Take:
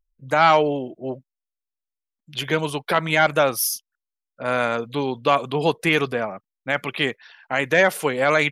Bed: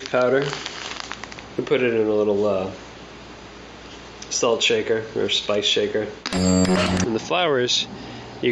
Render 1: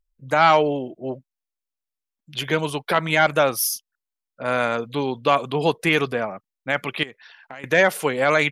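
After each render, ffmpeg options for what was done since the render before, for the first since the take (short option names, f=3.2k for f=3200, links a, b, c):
-filter_complex "[0:a]asettb=1/sr,asplit=3[a][b][c];[a]atrim=end=7.034[d];[b]atrim=start=7.03:end=7.64,asetpts=PTS-STARTPTS,afade=t=in:d=0.004:c=qsin,afade=t=out:st=0.606:d=0.004:c=qsin,acompressor=threshold=-35dB:ratio=5:attack=3.2:release=140:knee=1:detection=peak[e];[c]atrim=start=7.636[f];[d][e]acrossfade=d=0.004:c1=hsin:c2=qsin[g];[g][f]acrossfade=d=0.004:c1=qsin:c2=hsin"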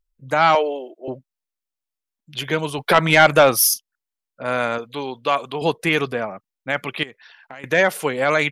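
-filter_complex "[0:a]asettb=1/sr,asplit=3[a][b][c];[a]atrim=end=0.554[d];[b]atrim=start=0.55:end=1.08,asetpts=PTS-STARTPTS,afade=t=in:d=0.004:c=qsin,afade=t=out:st=0.526:d=0.004:c=qsin,highpass=f=360:w=0.5412,highpass=f=360:w=1.3066[e];[c]atrim=start=1.076[f];[d][e]acrossfade=d=0.004:c1=hsin:c2=qsin[g];[g][f]acrossfade=d=0.004:c1=qsin:c2=hsin,asettb=1/sr,asplit=3[h][i][j];[h]atrim=end=2.784[k];[i]atrim=start=2.78:end=3.74,asetpts=PTS-STARTPTS,afade=t=in:d=0.004:c=qsin,afade=t=out:st=0.956:d=0.004:c=qsin,acontrast=78[l];[j]atrim=start=3.736[m];[k][l]acrossfade=d=0.004:c1=hsin:c2=qsin[n];[n][m]acrossfade=d=0.004:c1=qsin:c2=hsin,asettb=1/sr,asplit=3[o][p][q];[o]atrim=end=4.784[r];[p]atrim=start=4.78:end=5.62,asetpts=PTS-STARTPTS,afade=t=in:d=0.004:c=qsin,afade=t=out:st=0.836:d=0.004:c=qsin,lowshelf=f=320:g=-10[s];[q]atrim=start=5.616[t];[r][s]acrossfade=d=0.004:c1=hsin:c2=qsin[u];[u][t]acrossfade=d=0.004:c1=qsin:c2=hsin"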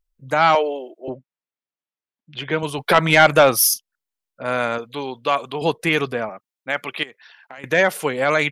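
-filter_complex "[0:a]asettb=1/sr,asplit=3[a][b][c];[a]atrim=end=1.094[d];[b]atrim=start=1.09:end=2.63,asetpts=PTS-STARTPTS,afade=t=in:d=0.004:c=qsin,afade=t=out:st=1.536:d=0.004:c=qsin,highpass=110,lowpass=3.1k[e];[c]atrim=start=2.626[f];[d][e]acrossfade=d=0.004:c1=hsin:c2=qsin[g];[g][f]acrossfade=d=0.004:c1=qsin:c2=hsin,asettb=1/sr,asplit=3[h][i][j];[h]atrim=end=6.294[k];[i]atrim=start=6.29:end=7.58,asetpts=PTS-STARTPTS,afade=t=in:d=0.004:c=qsin,afade=t=out:st=1.286:d=0.004:c=qsin,highpass=f=340:p=1[l];[j]atrim=start=7.576[m];[k][l]acrossfade=d=0.004:c1=hsin:c2=qsin[n];[n][m]acrossfade=d=0.004:c1=qsin:c2=hsin"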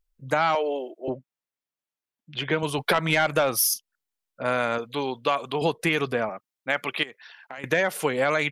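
-af "acompressor=threshold=-19dB:ratio=6"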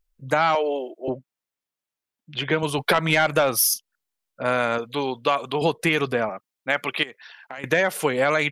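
-af "volume=2.5dB"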